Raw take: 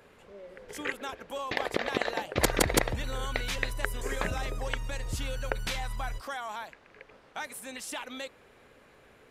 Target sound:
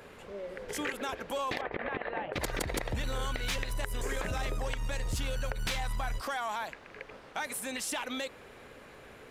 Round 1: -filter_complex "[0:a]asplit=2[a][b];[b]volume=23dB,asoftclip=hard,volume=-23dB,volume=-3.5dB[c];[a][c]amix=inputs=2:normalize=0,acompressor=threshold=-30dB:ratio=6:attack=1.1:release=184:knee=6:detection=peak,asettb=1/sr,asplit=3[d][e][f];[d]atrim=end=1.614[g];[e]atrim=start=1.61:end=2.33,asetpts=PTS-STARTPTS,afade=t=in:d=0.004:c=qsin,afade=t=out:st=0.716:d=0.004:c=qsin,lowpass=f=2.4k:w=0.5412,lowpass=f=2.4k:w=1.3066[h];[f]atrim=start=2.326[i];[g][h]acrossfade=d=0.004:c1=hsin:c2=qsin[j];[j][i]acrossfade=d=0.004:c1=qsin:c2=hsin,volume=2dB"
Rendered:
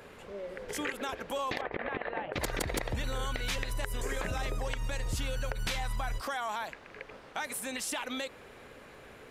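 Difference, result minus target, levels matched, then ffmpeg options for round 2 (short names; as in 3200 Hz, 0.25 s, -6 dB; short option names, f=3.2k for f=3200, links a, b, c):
overloaded stage: distortion -6 dB
-filter_complex "[0:a]asplit=2[a][b];[b]volume=34dB,asoftclip=hard,volume=-34dB,volume=-3.5dB[c];[a][c]amix=inputs=2:normalize=0,acompressor=threshold=-30dB:ratio=6:attack=1.1:release=184:knee=6:detection=peak,asettb=1/sr,asplit=3[d][e][f];[d]atrim=end=1.614[g];[e]atrim=start=1.61:end=2.33,asetpts=PTS-STARTPTS,afade=t=in:d=0.004:c=qsin,afade=t=out:st=0.716:d=0.004:c=qsin,lowpass=f=2.4k:w=0.5412,lowpass=f=2.4k:w=1.3066[h];[f]atrim=start=2.326[i];[g][h]acrossfade=d=0.004:c1=hsin:c2=qsin[j];[j][i]acrossfade=d=0.004:c1=qsin:c2=hsin,volume=2dB"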